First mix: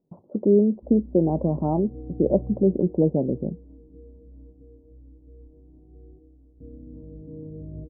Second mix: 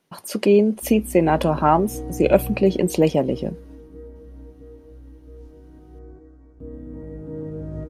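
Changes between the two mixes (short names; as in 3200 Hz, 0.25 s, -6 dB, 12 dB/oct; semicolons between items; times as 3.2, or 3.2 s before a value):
background +5.0 dB; master: remove Gaussian blur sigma 15 samples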